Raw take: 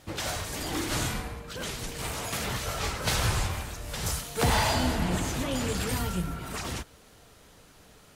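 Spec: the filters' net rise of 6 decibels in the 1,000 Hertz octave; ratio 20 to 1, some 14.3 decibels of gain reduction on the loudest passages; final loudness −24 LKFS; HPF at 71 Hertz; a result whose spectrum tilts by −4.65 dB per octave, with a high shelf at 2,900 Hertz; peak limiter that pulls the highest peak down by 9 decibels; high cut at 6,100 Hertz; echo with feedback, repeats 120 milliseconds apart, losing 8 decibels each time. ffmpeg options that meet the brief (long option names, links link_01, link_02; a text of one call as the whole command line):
ffmpeg -i in.wav -af "highpass=71,lowpass=6100,equalizer=frequency=1000:width_type=o:gain=8,highshelf=frequency=2900:gain=-4.5,acompressor=threshold=-32dB:ratio=20,alimiter=level_in=7dB:limit=-24dB:level=0:latency=1,volume=-7dB,aecho=1:1:120|240|360|480|600:0.398|0.159|0.0637|0.0255|0.0102,volume=15dB" out.wav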